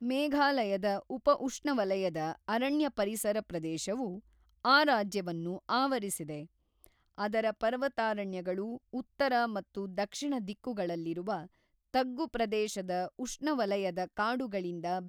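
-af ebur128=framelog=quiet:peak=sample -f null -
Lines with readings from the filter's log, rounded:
Integrated loudness:
  I:         -32.7 LUFS
  Threshold: -43.0 LUFS
Loudness range:
  LRA:         4.1 LU
  Threshold: -53.2 LUFS
  LRA low:   -35.3 LUFS
  LRA high:  -31.3 LUFS
Sample peak:
  Peak:      -12.5 dBFS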